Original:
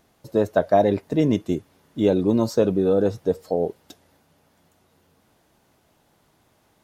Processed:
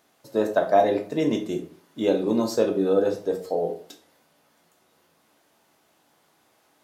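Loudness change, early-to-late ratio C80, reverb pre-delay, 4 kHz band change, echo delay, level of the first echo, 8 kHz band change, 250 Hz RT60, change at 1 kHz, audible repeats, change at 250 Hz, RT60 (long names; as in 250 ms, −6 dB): −2.0 dB, 15.0 dB, 11 ms, +1.0 dB, no echo audible, no echo audible, can't be measured, 0.50 s, +0.5 dB, no echo audible, −3.5 dB, 0.45 s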